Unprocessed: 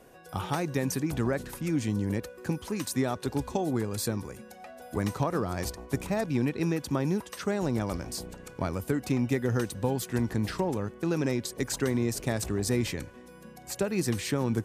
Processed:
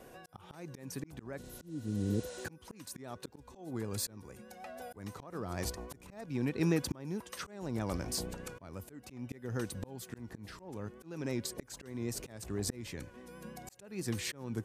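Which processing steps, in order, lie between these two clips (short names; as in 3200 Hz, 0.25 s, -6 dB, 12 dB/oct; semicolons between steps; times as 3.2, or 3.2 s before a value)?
vibrato 6.3 Hz 39 cents; spectral repair 1.46–2.42, 520–10000 Hz before; auto swell 0.742 s; gain +1 dB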